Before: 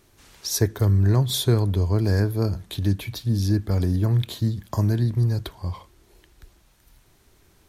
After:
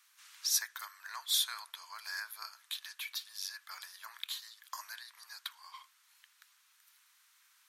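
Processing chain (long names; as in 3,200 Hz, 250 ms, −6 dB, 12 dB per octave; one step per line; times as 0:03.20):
Butterworth high-pass 1,100 Hz 36 dB per octave
level −3.5 dB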